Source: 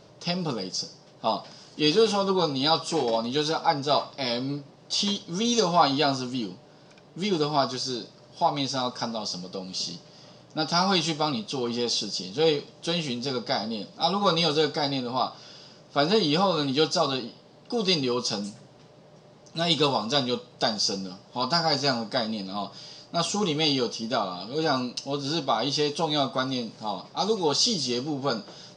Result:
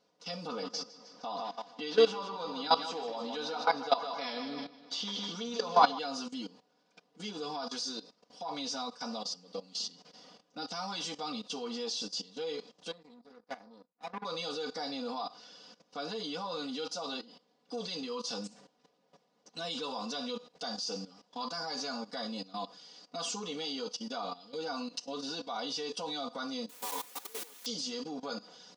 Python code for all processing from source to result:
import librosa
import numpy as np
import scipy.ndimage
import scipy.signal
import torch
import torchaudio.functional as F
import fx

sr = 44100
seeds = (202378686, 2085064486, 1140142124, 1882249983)

y = fx.chain(x, sr, fx.lowpass(hz=5300.0, slope=12),
    fx.peak_eq(hz=1300.0, db=5.0, octaves=2.7),
    fx.echo_feedback(ms=155, feedback_pct=53, wet_db=-9.0), at=(0.47, 5.99))
y = fx.chain(y, sr, fx.moving_average(points=15),
    fx.power_curve(exponent=2.0), at=(12.91, 14.25))
y = fx.chain(y, sr, fx.over_compress(threshold_db=-35.0, ratio=-1.0),
    fx.fixed_phaser(hz=1000.0, stages=8),
    fx.quant_dither(seeds[0], bits=6, dither='triangular'), at=(26.69, 27.66))
y = fx.level_steps(y, sr, step_db=17)
y = fx.highpass(y, sr, hz=350.0, slope=6)
y = y + 0.98 * np.pad(y, (int(4.1 * sr / 1000.0), 0))[:len(y)]
y = y * librosa.db_to_amplitude(-5.0)